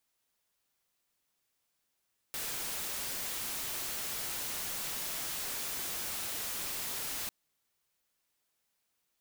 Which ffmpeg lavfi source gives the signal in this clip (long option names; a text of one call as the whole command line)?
ffmpeg -f lavfi -i "anoisesrc=color=white:amplitude=0.0231:duration=4.95:sample_rate=44100:seed=1" out.wav